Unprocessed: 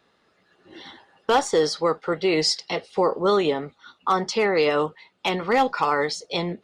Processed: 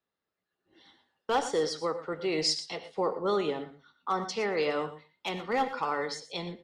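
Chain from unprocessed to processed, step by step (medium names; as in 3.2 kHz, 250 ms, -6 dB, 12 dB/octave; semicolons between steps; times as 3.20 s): resampled via 32 kHz; delay 117 ms -17.5 dB; gated-style reverb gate 140 ms rising, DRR 10.5 dB; three bands expanded up and down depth 40%; trim -9 dB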